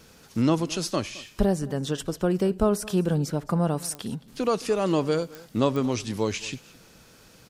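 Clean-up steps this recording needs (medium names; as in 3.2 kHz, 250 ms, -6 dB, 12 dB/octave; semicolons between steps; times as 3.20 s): de-click; inverse comb 217 ms -21 dB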